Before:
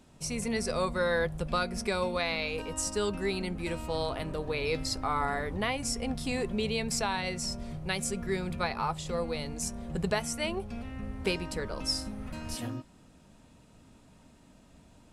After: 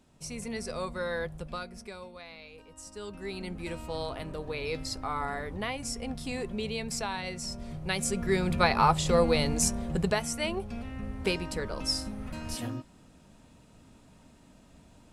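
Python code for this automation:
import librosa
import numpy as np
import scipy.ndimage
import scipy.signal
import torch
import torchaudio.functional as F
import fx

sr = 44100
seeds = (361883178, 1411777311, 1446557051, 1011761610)

y = fx.gain(x, sr, db=fx.line((1.34, -5.0), (2.14, -16.0), (2.72, -16.0), (3.51, -3.0), (7.43, -3.0), (8.82, 9.0), (9.58, 9.0), (10.17, 1.0)))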